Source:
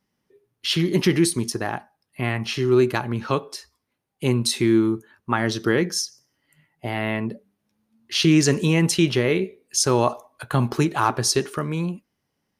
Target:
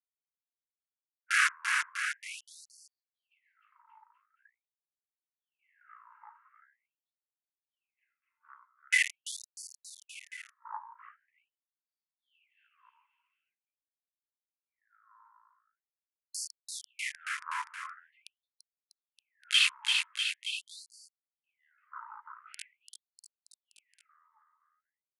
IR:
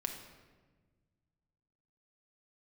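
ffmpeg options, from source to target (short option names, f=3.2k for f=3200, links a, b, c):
-filter_complex "[0:a]afwtdn=0.0562,lowpass=6.4k,asplit=2[a][b];[b]alimiter=limit=-13.5dB:level=0:latency=1,volume=-3dB[c];[a][c]amix=inputs=2:normalize=0,acompressor=threshold=-15dB:ratio=6,flanger=delay=2.1:depth=7:regen=-55:speed=1.8:shape=sinusoidal,acrossover=split=3000[d][e];[e]acrusher=bits=4:mix=0:aa=0.000001[f];[d][f]amix=inputs=2:normalize=0,aecho=1:1:170|323|460.7|584.6|696.2:0.631|0.398|0.251|0.158|0.1,asetrate=22050,aresample=44100,afftfilt=real='re*gte(b*sr/1024,850*pow(4400/850,0.5+0.5*sin(2*PI*0.44*pts/sr)))':imag='im*gte(b*sr/1024,850*pow(4400/850,0.5+0.5*sin(2*PI*0.44*pts/sr)))':win_size=1024:overlap=0.75"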